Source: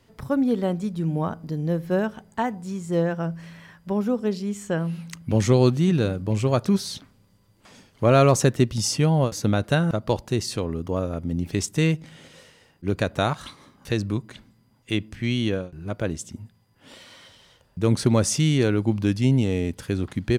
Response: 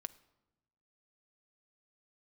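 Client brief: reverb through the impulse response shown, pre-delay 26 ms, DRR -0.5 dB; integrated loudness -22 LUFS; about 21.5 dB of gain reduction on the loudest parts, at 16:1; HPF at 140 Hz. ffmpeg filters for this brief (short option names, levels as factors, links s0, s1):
-filter_complex "[0:a]highpass=140,acompressor=threshold=0.02:ratio=16,asplit=2[s0][s1];[1:a]atrim=start_sample=2205,adelay=26[s2];[s1][s2]afir=irnorm=-1:irlink=0,volume=1.58[s3];[s0][s3]amix=inputs=2:normalize=0,volume=5.62"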